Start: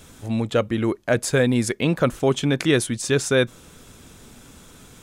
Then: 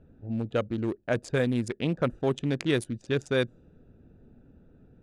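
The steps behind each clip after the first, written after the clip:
adaptive Wiener filter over 41 samples
low-pass that shuts in the quiet parts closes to 2,700 Hz, open at −14.5 dBFS
level −6.5 dB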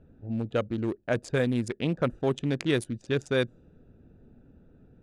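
no processing that can be heard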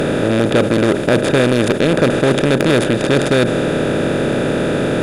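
compressor on every frequency bin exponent 0.2
in parallel at −6 dB: sine wavefolder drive 6 dB, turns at −5.5 dBFS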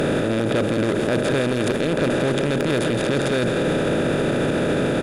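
single-tap delay 168 ms −9.5 dB
brickwall limiter −13 dBFS, peak gain reduction 10.5 dB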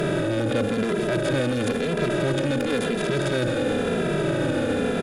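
barber-pole flanger 2.6 ms −0.97 Hz

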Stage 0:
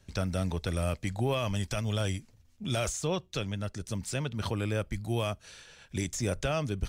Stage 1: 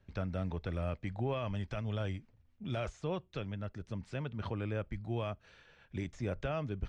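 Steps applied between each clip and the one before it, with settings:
low-pass filter 2,400 Hz 12 dB per octave
level −5.5 dB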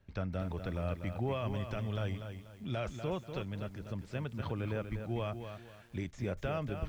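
feedback echo at a low word length 243 ms, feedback 35%, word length 10 bits, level −8 dB

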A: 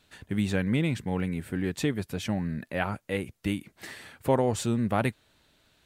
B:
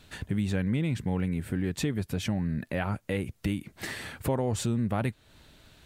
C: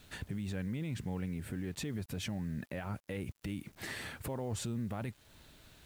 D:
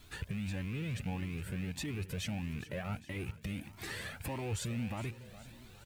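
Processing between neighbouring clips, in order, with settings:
low-shelf EQ 180 Hz +8 dB; in parallel at −1.5 dB: brickwall limiter −22.5 dBFS, peak gain reduction 11 dB; on the sum: downward compressor 2 to 1, threshold −34 dBFS, peak gain reduction 11 dB; level +1.5 dB
brickwall limiter −27 dBFS, peak gain reduction 10 dB; bit-depth reduction 10 bits, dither none; level −3.5 dB
loose part that buzzes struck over −42 dBFS, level −38 dBFS; repeating echo 412 ms, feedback 58%, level −16 dB; flanger whose copies keep moving one way rising 1.6 Hz; level +4.5 dB

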